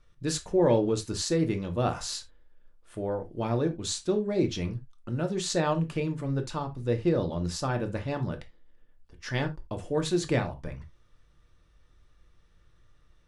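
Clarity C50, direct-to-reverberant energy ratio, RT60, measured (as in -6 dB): 15.5 dB, 5.0 dB, not exponential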